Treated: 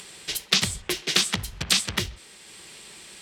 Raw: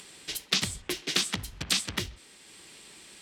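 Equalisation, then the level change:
parametric band 280 Hz −10 dB 0.24 octaves
+5.5 dB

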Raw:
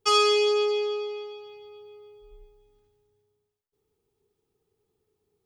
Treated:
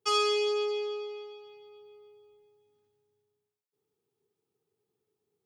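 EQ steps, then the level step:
high-pass filter 110 Hz 24 dB per octave
−6.0 dB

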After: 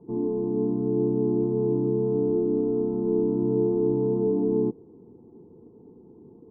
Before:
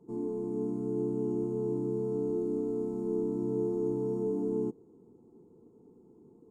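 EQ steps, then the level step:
low-pass filter 1,100 Hz 24 dB per octave
parametric band 84 Hz +4 dB 1.1 octaves
+7.5 dB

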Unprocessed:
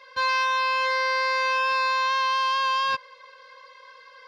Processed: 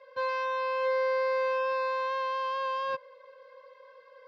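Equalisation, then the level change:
high-pass filter 89 Hz
low-pass filter 1,400 Hz 6 dB per octave
parametric band 540 Hz +12.5 dB 0.52 octaves
−7.0 dB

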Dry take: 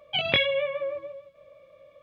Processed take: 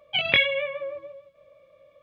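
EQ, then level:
dynamic equaliser 2,100 Hz, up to +8 dB, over −39 dBFS, Q 1.2
−2.5 dB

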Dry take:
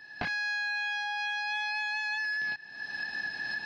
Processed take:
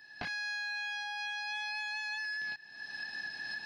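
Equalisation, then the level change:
high-shelf EQ 4,600 Hz +10 dB
−7.0 dB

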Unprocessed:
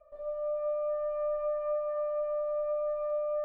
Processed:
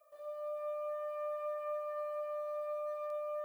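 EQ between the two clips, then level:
first difference
+13.5 dB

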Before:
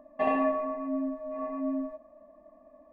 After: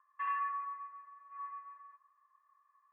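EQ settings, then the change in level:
Chebyshev high-pass with heavy ripple 1,000 Hz, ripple 9 dB
low-pass filter 2,000 Hz 24 dB per octave
high-frequency loss of the air 160 metres
+7.0 dB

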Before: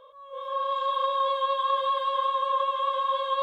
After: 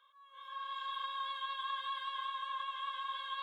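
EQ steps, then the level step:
four-pole ladder high-pass 1,400 Hz, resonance 45%
+1.0 dB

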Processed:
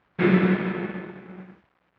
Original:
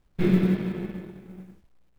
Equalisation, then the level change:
band-pass filter 110–3,100 Hz
parametric band 1,500 Hz +13 dB 2.9 octaves
0.0 dB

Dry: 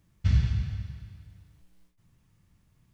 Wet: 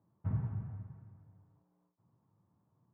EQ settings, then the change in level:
elliptic band-pass filter 100–990 Hz, stop band 60 dB
high-frequency loss of the air 150 metres
spectral tilt +3 dB per octave
+2.0 dB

